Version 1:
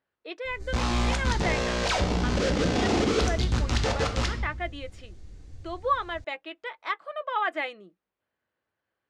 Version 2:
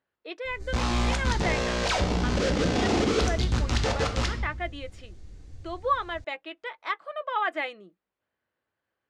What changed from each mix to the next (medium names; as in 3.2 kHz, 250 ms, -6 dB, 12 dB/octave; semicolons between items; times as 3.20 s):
no change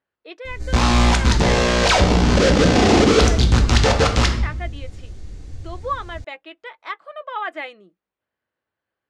background +10.5 dB